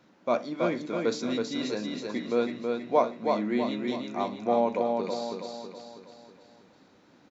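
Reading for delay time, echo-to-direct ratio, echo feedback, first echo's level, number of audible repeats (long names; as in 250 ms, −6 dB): 323 ms, −3.0 dB, 48%, −4.0 dB, 5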